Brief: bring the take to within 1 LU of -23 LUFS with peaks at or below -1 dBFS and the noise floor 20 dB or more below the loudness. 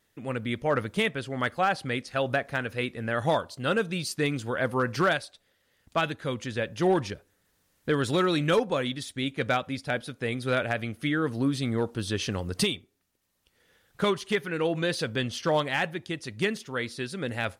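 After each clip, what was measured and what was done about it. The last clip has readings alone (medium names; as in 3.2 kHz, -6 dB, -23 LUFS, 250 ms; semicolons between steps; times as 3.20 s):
clipped samples 0.2%; clipping level -16.0 dBFS; loudness -28.5 LUFS; peak level -16.0 dBFS; loudness target -23.0 LUFS
-> clip repair -16 dBFS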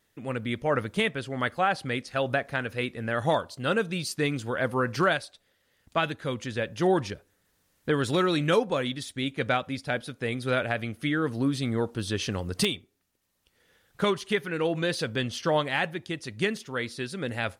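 clipped samples 0.0%; loudness -28.5 LUFS; peak level -7.0 dBFS; loudness target -23.0 LUFS
-> trim +5.5 dB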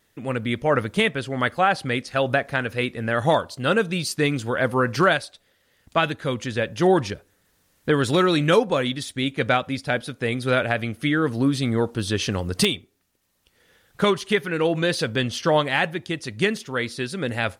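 loudness -23.0 LUFS; peak level -1.5 dBFS; noise floor -66 dBFS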